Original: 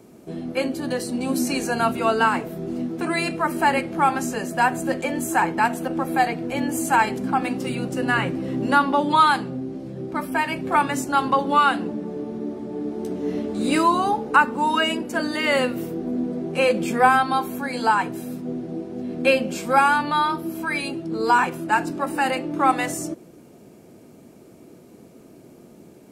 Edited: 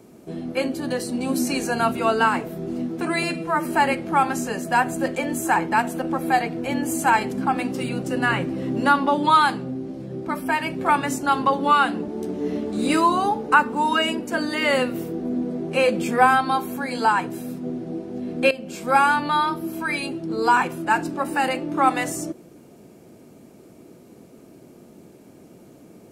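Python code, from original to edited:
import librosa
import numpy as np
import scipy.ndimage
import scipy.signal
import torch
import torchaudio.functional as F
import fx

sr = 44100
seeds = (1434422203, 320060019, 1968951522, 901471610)

y = fx.edit(x, sr, fx.stretch_span(start_s=3.23, length_s=0.28, factor=1.5),
    fx.cut(start_s=11.94, length_s=0.96),
    fx.fade_in_from(start_s=19.33, length_s=0.48, floor_db=-15.5), tone=tone)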